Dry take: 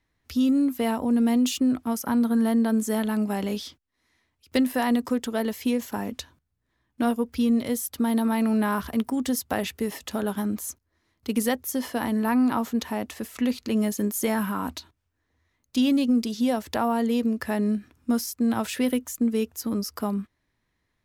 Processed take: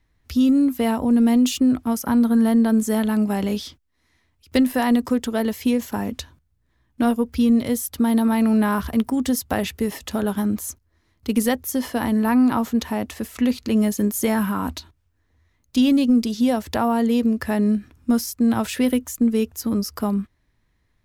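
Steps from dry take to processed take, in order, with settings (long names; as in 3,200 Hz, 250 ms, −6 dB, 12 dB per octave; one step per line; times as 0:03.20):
low-shelf EQ 110 Hz +11 dB
level +3 dB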